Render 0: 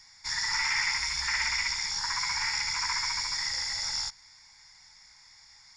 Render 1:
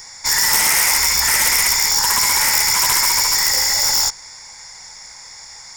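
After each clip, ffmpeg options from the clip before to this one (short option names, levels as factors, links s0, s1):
-af "equalizer=f=500:t=o:w=1.5:g=12.5,aeval=exprs='0.188*sin(PI/2*3.55*val(0)/0.188)':c=same,aexciter=amount=4:drive=3.1:freq=6300,volume=0.891"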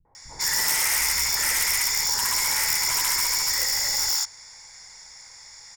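-filter_complex "[0:a]acrossover=split=220|850[s0][s1][s2];[s1]adelay=50[s3];[s2]adelay=150[s4];[s0][s3][s4]amix=inputs=3:normalize=0,volume=0.422"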